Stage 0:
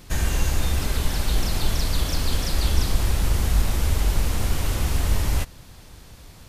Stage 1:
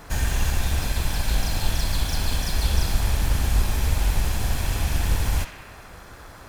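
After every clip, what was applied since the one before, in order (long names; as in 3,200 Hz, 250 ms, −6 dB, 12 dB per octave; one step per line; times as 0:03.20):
lower of the sound and its delayed copy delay 1.2 ms
feedback echo with a band-pass in the loop 66 ms, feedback 79%, band-pass 2,100 Hz, level −7 dB
noise in a band 180–1,700 Hz −47 dBFS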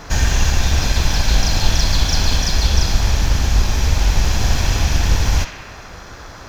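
speech leveller 0.5 s
high shelf with overshoot 7,400 Hz −7.5 dB, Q 3
level +7 dB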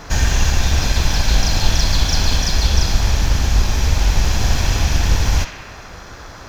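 no processing that can be heard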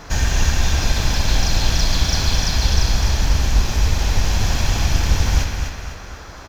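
repeating echo 252 ms, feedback 43%, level −6.5 dB
level −2.5 dB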